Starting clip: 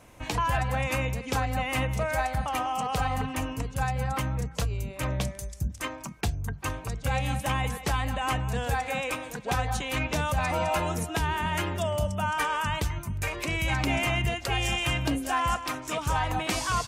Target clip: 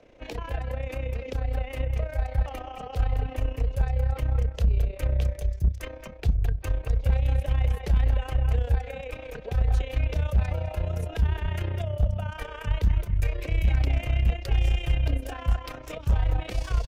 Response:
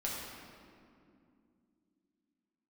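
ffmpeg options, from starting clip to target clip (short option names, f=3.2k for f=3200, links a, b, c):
-filter_complex "[0:a]equalizer=f=125:t=o:w=1:g=-7,equalizer=f=500:t=o:w=1:g=11,equalizer=f=1k:t=o:w=1:g=-9,equalizer=f=8k:t=o:w=1:g=-7,asplit=2[a][b];[b]adelay=210,highpass=300,lowpass=3.4k,asoftclip=type=hard:threshold=-21.5dB,volume=-8dB[c];[a][c]amix=inputs=2:normalize=0,asubboost=boost=11:cutoff=73,acrossover=split=220|6400[d][e][f];[f]aeval=exprs='sgn(val(0))*max(abs(val(0))-0.00158,0)':c=same[g];[d][e][g]amix=inputs=3:normalize=0,tremolo=f=31:d=0.667,asoftclip=type=hard:threshold=-15dB,acrossover=split=250[h][i];[i]acompressor=threshold=-35dB:ratio=6[j];[h][j]amix=inputs=2:normalize=0"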